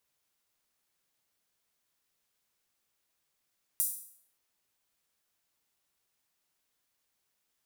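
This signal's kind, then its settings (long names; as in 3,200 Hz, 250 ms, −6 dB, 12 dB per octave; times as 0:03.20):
open synth hi-hat length 0.58 s, high-pass 9,500 Hz, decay 0.59 s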